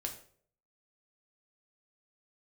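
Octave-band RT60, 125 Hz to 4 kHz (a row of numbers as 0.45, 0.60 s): 0.65, 0.55, 0.65, 0.45, 0.40, 0.40 s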